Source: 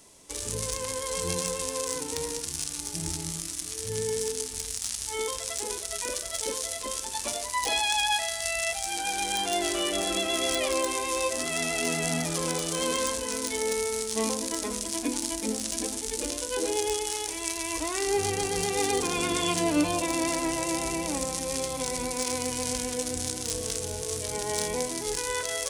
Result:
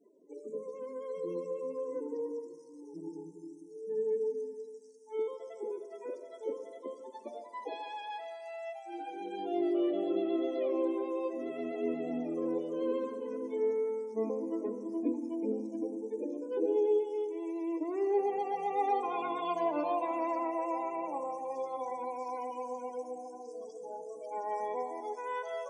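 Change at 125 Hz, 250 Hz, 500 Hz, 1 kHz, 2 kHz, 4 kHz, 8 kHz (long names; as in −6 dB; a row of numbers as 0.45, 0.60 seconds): −20.5 dB, −3.0 dB, −2.0 dB, −3.5 dB, −18.0 dB, −26.0 dB, below −35 dB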